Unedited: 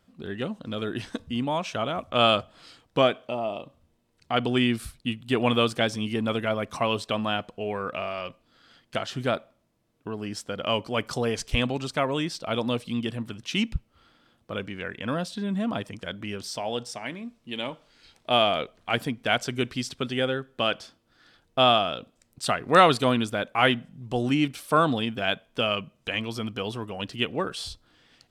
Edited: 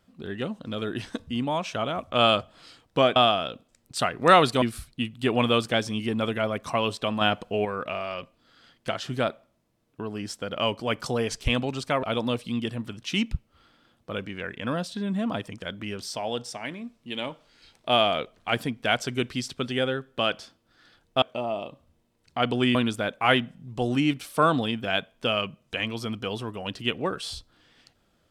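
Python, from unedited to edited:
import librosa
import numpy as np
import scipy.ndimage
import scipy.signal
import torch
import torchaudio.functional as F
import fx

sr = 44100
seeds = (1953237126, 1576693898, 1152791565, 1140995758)

y = fx.edit(x, sr, fx.swap(start_s=3.16, length_s=1.53, other_s=21.63, other_length_s=1.46),
    fx.clip_gain(start_s=7.28, length_s=0.44, db=5.0),
    fx.cut(start_s=12.1, length_s=0.34), tone=tone)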